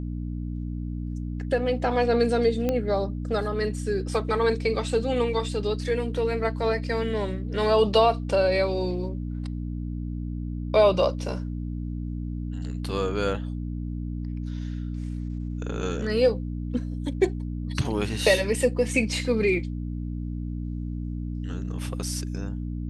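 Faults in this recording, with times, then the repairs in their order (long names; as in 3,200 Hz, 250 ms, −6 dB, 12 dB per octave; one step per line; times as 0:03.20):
mains hum 60 Hz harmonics 5 −31 dBFS
0:02.69: click −13 dBFS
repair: click removal
hum removal 60 Hz, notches 5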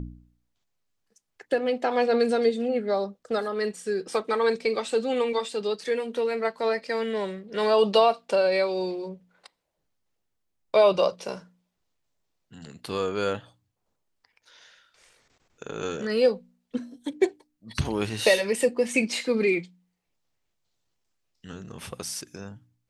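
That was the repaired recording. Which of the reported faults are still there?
none of them is left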